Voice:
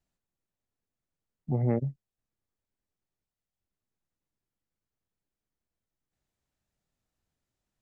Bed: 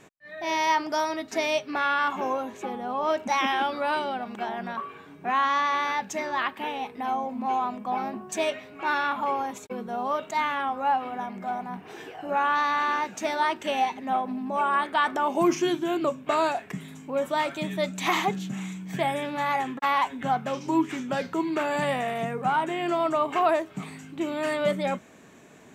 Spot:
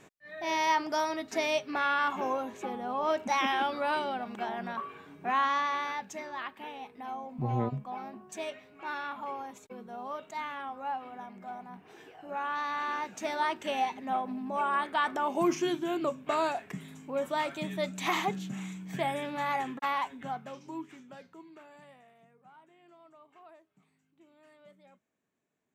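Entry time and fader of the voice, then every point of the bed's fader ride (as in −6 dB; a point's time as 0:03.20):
5.90 s, −4.5 dB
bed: 0:05.41 −3.5 dB
0:06.33 −11 dB
0:12.27 −11 dB
0:13.41 −5 dB
0:19.75 −5 dB
0:22.21 −32.5 dB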